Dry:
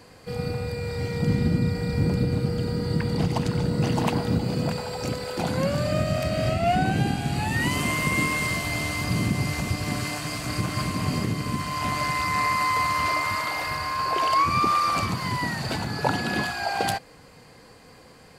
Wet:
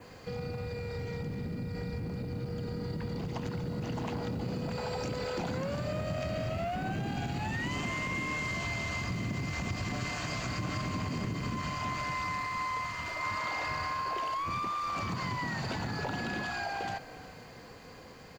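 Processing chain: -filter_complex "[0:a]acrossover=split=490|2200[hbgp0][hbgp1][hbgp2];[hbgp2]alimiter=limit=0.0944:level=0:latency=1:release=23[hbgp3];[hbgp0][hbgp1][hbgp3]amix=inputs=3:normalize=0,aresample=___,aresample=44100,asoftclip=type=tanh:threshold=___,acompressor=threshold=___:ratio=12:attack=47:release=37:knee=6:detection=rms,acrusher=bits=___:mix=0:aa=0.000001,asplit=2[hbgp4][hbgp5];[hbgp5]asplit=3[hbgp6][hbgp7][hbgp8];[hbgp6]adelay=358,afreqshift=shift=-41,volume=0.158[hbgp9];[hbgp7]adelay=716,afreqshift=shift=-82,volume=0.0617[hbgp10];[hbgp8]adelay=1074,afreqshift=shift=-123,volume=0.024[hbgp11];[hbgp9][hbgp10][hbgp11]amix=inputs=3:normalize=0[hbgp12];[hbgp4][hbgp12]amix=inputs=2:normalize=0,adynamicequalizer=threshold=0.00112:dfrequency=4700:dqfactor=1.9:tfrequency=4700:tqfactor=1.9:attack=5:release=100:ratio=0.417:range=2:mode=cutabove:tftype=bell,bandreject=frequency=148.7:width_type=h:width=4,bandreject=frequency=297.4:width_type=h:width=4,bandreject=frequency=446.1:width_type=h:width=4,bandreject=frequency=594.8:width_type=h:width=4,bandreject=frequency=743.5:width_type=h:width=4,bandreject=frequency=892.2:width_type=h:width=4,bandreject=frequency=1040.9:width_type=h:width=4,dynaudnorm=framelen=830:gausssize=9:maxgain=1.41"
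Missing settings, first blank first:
16000, 0.119, 0.0126, 10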